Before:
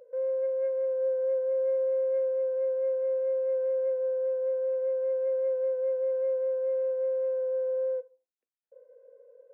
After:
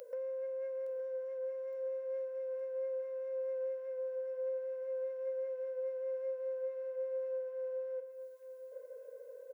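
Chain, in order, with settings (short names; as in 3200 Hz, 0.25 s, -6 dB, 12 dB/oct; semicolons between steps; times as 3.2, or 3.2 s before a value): tilt +3.5 dB/oct; compressor 5:1, threshold -47 dBFS, peak gain reduction 16 dB; feedback echo 0.865 s, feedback 49%, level -11 dB; gain +7 dB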